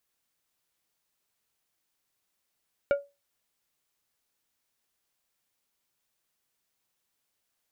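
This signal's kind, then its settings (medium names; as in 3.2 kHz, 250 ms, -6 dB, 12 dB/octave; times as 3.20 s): glass hit plate, lowest mode 566 Hz, decay 0.24 s, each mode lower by 9 dB, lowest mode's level -17 dB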